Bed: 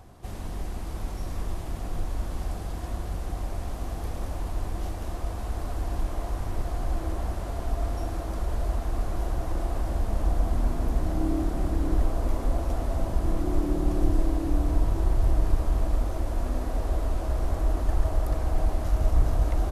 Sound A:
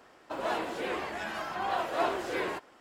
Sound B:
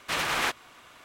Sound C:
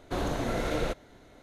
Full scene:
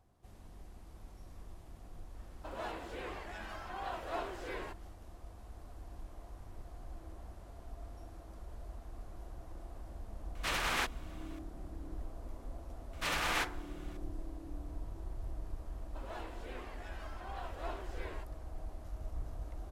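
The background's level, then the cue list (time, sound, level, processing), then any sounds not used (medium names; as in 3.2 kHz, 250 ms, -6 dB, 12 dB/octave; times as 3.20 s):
bed -19.5 dB
2.14 s: add A -10 dB
10.35 s: add B -6.5 dB
12.93 s: add B -7 dB + FDN reverb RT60 0.58 s, high-frequency decay 0.4×, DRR 7 dB
15.65 s: add A -14.5 dB
not used: C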